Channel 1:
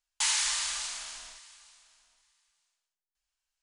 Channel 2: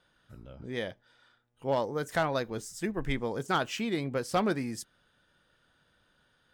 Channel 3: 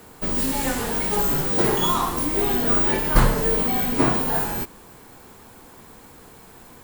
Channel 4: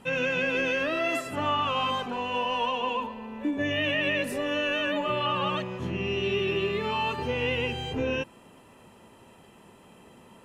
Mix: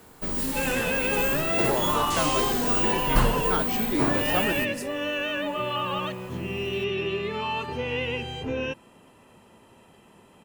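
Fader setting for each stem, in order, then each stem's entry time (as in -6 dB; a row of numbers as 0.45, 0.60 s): -6.5, -1.0, -5.0, -1.0 dB; 1.90, 0.00, 0.00, 0.50 s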